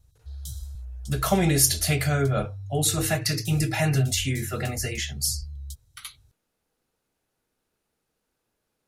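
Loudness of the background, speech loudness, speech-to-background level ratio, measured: -38.0 LUFS, -24.5 LUFS, 13.5 dB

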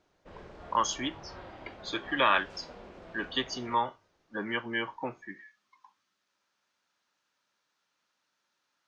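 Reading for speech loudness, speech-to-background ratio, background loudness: -31.5 LUFS, 17.5 dB, -49.0 LUFS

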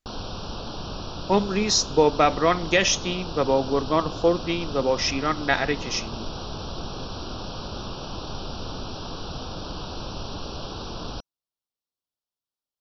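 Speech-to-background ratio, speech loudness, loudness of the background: 11.5 dB, -23.0 LUFS, -34.5 LUFS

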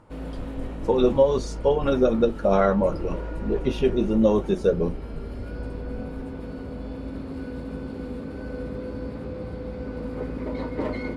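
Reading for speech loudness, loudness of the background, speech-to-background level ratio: -23.0 LUFS, -34.5 LUFS, 11.5 dB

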